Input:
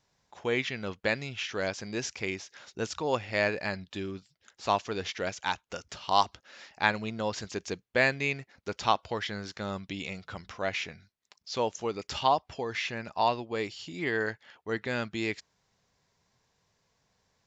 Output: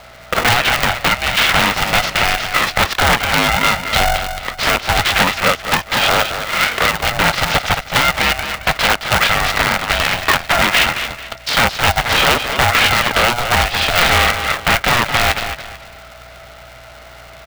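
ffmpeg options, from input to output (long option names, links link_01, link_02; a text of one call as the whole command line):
ffmpeg -i in.wav -filter_complex "[0:a]acompressor=threshold=-42dB:ratio=8,aeval=exprs='(mod(84.1*val(0)+1,2)-1)/84.1':channel_layout=same,aeval=exprs='val(0)+0.00112*(sin(2*PI*60*n/s)+sin(2*PI*2*60*n/s)/2+sin(2*PI*3*60*n/s)/3+sin(2*PI*4*60*n/s)/4+sin(2*PI*5*60*n/s)/5)':channel_layout=same,highpass=frequency=320:width=0.5412,highpass=frequency=320:width=1.3066,equalizer=frequency=690:width_type=q:width=4:gain=-8,equalizer=frequency=1000:width_type=q:width=4:gain=4,equalizer=frequency=1700:width_type=q:width=4:gain=5,lowpass=frequency=3700:width=0.5412,lowpass=frequency=3700:width=1.3066,asplit=2[link_01][link_02];[link_02]aecho=0:1:220|440|660|880:0.355|0.11|0.0341|0.0106[link_03];[link_01][link_03]amix=inputs=2:normalize=0,alimiter=level_in=35.5dB:limit=-1dB:release=50:level=0:latency=1,aeval=exprs='val(0)*sgn(sin(2*PI*360*n/s))':channel_layout=same,volume=-1dB" out.wav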